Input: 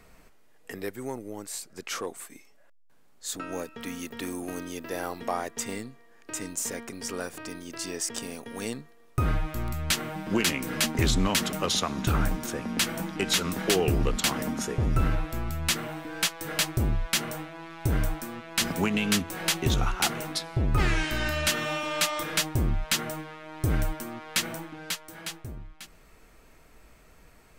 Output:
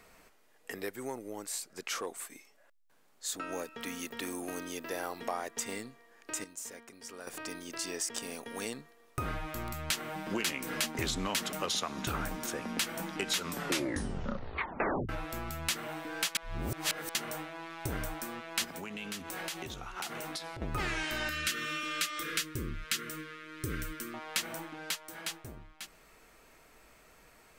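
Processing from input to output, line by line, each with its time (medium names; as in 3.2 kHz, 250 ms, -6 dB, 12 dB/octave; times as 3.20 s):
6.44–7.27 s: gain -11 dB
13.44 s: tape stop 1.65 s
16.35–17.15 s: reverse
18.64–20.62 s: compression 16:1, threshold -33 dBFS
21.29–24.14 s: Chebyshev band-stop 450–1300 Hz
whole clip: bass shelf 230 Hz -11 dB; compression 2:1, threshold -34 dBFS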